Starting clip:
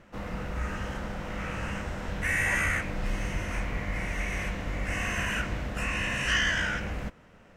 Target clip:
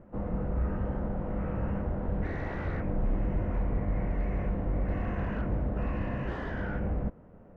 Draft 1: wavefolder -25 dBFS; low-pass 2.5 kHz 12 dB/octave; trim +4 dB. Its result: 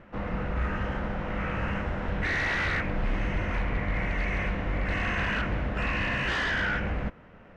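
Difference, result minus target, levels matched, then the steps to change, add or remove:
2 kHz band +12.0 dB
change: low-pass 680 Hz 12 dB/octave

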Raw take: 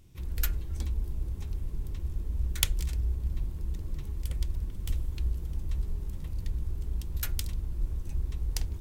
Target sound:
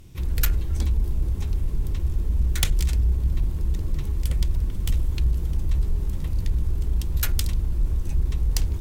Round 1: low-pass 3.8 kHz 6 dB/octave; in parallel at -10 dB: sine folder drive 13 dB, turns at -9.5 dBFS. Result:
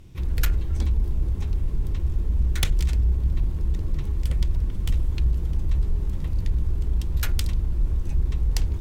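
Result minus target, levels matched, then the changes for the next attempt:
8 kHz band -5.0 dB
change: low-pass 15 kHz 6 dB/octave

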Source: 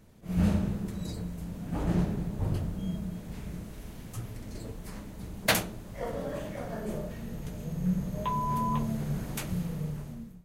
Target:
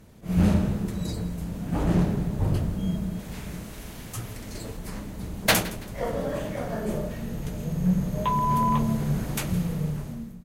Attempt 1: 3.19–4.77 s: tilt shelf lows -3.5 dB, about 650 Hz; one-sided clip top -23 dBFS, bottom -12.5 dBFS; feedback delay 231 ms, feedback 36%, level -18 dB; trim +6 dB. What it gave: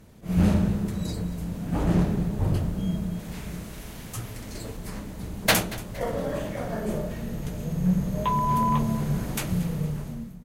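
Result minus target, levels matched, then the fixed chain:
echo 66 ms late
3.19–4.77 s: tilt shelf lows -3.5 dB, about 650 Hz; one-sided clip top -23 dBFS, bottom -12.5 dBFS; feedback delay 165 ms, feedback 36%, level -18 dB; trim +6 dB

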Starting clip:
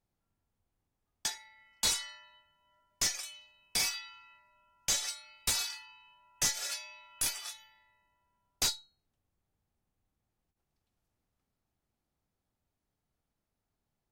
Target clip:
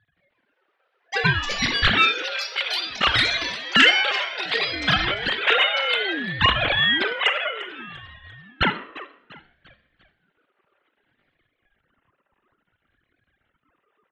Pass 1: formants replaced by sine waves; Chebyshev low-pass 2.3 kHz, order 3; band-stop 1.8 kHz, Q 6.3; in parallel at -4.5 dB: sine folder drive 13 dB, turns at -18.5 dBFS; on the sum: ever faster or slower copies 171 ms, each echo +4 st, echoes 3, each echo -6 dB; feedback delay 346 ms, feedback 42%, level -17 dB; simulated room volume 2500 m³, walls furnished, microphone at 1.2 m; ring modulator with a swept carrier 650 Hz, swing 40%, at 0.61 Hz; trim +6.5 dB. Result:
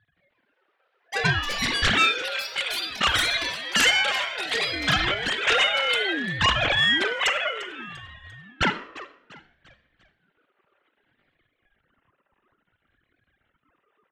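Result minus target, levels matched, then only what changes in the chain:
sine folder: distortion +16 dB
change: sine folder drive 13 dB, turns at -9 dBFS

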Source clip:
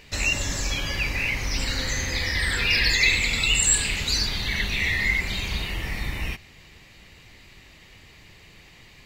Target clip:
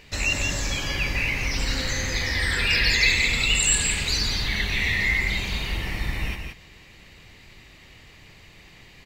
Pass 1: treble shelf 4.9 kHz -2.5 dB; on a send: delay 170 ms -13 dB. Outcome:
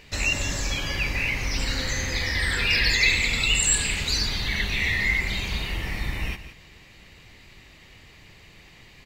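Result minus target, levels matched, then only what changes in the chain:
echo-to-direct -7.5 dB
change: delay 170 ms -5.5 dB

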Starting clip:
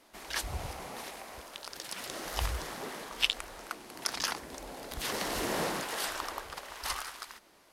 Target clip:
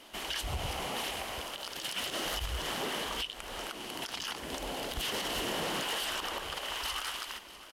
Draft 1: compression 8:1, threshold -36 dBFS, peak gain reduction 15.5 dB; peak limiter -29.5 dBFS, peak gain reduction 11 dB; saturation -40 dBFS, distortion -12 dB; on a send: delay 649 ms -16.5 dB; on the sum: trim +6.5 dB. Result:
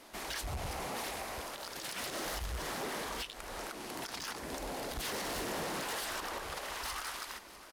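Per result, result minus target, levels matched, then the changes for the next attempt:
saturation: distortion +10 dB; 4 kHz band -4.0 dB
change: saturation -31.5 dBFS, distortion -22 dB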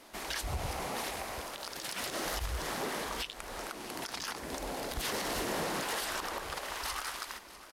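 4 kHz band -4.0 dB
add after compression: peaking EQ 3 kHz +12.5 dB 0.3 oct

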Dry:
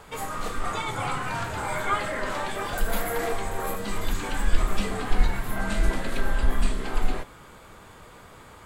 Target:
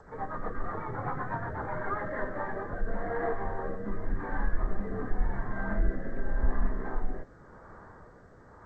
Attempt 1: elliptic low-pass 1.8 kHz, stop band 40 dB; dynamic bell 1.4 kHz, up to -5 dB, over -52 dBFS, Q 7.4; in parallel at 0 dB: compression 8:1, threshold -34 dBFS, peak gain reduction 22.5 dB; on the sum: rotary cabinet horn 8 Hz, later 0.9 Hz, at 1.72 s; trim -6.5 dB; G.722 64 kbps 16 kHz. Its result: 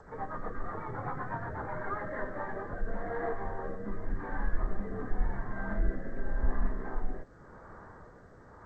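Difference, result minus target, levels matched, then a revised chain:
compression: peak gain reduction +9.5 dB
elliptic low-pass 1.8 kHz, stop band 40 dB; dynamic bell 1.4 kHz, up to -5 dB, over -52 dBFS, Q 7.4; in parallel at 0 dB: compression 8:1, threshold -23 dBFS, peak gain reduction 12.5 dB; on the sum: rotary cabinet horn 8 Hz, later 0.9 Hz, at 1.72 s; trim -6.5 dB; G.722 64 kbps 16 kHz

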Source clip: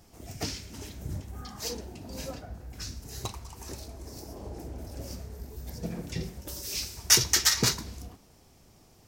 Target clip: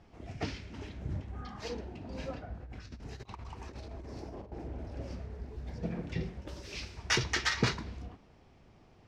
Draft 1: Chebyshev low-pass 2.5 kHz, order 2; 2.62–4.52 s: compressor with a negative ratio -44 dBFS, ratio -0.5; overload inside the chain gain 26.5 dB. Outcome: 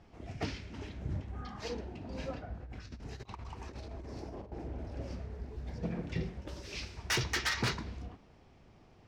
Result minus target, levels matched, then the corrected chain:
overload inside the chain: distortion +37 dB
Chebyshev low-pass 2.5 kHz, order 2; 2.62–4.52 s: compressor with a negative ratio -44 dBFS, ratio -0.5; overload inside the chain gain 14.5 dB

